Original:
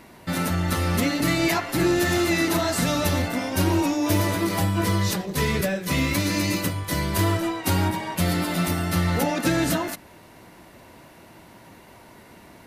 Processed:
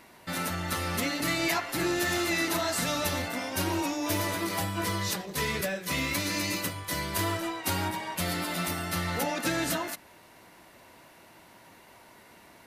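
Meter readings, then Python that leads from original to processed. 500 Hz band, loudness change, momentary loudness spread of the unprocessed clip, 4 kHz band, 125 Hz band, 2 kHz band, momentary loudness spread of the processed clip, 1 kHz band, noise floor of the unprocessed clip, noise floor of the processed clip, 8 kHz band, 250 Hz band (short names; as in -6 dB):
-7.0 dB, -6.0 dB, 4 LU, -3.0 dB, -11.5 dB, -3.5 dB, 5 LU, -4.5 dB, -49 dBFS, -55 dBFS, -3.0 dB, -9.5 dB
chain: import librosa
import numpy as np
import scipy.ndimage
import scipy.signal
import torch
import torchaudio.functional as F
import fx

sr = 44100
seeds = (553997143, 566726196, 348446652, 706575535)

y = fx.low_shelf(x, sr, hz=430.0, db=-9.0)
y = y * 10.0 ** (-3.0 / 20.0)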